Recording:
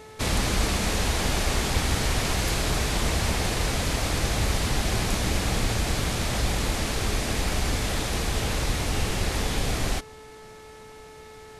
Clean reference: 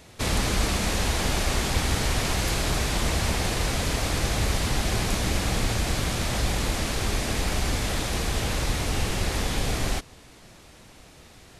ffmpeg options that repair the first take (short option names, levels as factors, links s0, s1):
-af "bandreject=f=434.4:t=h:w=4,bandreject=f=868.8:t=h:w=4,bandreject=f=1303.2:t=h:w=4,bandreject=f=1737.6:t=h:w=4,bandreject=f=2172:t=h:w=4"